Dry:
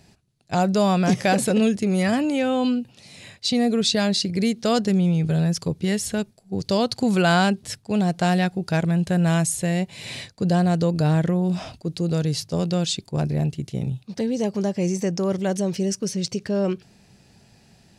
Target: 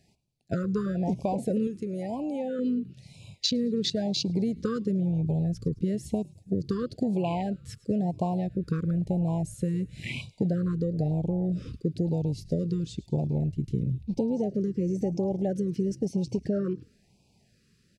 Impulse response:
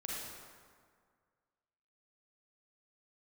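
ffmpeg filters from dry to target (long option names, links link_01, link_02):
-filter_complex "[0:a]acompressor=threshold=-29dB:ratio=12,asplit=6[link_01][link_02][link_03][link_04][link_05][link_06];[link_02]adelay=107,afreqshift=-58,volume=-19dB[link_07];[link_03]adelay=214,afreqshift=-116,volume=-24dB[link_08];[link_04]adelay=321,afreqshift=-174,volume=-29.1dB[link_09];[link_05]adelay=428,afreqshift=-232,volume=-34.1dB[link_10];[link_06]adelay=535,afreqshift=-290,volume=-39.1dB[link_11];[link_01][link_07][link_08][link_09][link_10][link_11]amix=inputs=6:normalize=0,afwtdn=0.0178,asettb=1/sr,asplit=3[link_12][link_13][link_14];[link_12]atrim=end=1.674[link_15];[link_13]atrim=start=1.67:end=2.59,asetpts=PTS-STARTPTS,afade=type=in:duration=0.004:curve=qsin,afade=type=out:start_time=0.916:duration=0.004:curve=qsin,lowshelf=frequency=270:gain=-11[link_16];[link_14]atrim=start=2.586[link_17];[link_15][link_16]acrossfade=duration=0.004:curve1=hsin:curve2=qsin[link_18];[link_18][link_17]acrossfade=duration=0.004:curve1=qsin:curve2=hsin,afftfilt=real='re*(1-between(b*sr/1024,710*pow(1600/710,0.5+0.5*sin(2*PI*1*pts/sr))/1.41,710*pow(1600/710,0.5+0.5*sin(2*PI*1*pts/sr))*1.41))':imag='im*(1-between(b*sr/1024,710*pow(1600/710,0.5+0.5*sin(2*PI*1*pts/sr))/1.41,710*pow(1600/710,0.5+0.5*sin(2*PI*1*pts/sr))*1.41))':win_size=1024:overlap=0.75,volume=5.5dB"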